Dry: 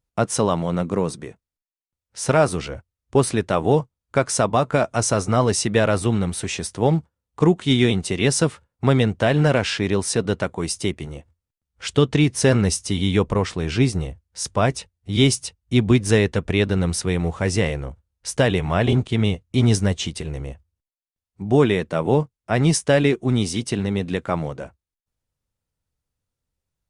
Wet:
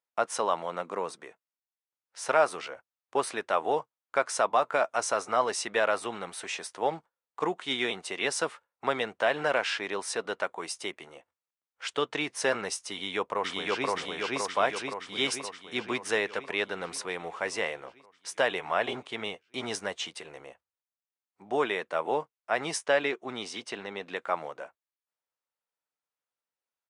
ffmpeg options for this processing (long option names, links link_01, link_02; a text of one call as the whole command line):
ffmpeg -i in.wav -filter_complex "[0:a]asplit=2[link_01][link_02];[link_02]afade=type=in:start_time=12.92:duration=0.01,afade=type=out:start_time=13.89:duration=0.01,aecho=0:1:520|1040|1560|2080|2600|3120|3640|4160|4680|5200|5720:1|0.65|0.4225|0.274625|0.178506|0.116029|0.0754189|0.0490223|0.0318645|0.0207119|0.0134627[link_03];[link_01][link_03]amix=inputs=2:normalize=0,asettb=1/sr,asplit=3[link_04][link_05][link_06];[link_04]atrim=end=22.864[link_07];[link_05]atrim=start=22.86:end=24.16,asetpts=PTS-STARTPTS,afade=type=in:duration=0.004:curve=qsin,afade=type=out:start_time=1.296:duration=0.004:curve=qsin,lowpass=7000[link_08];[link_06]atrim=start=24.156[link_09];[link_07][link_08]acrossfade=duration=0.004:curve1=hsin:curve2=qsin[link_10];[link_10][link_09]acrossfade=duration=0.004:curve1=qsin:curve2=hsin,highpass=790,highshelf=frequency=3000:gain=-12" out.wav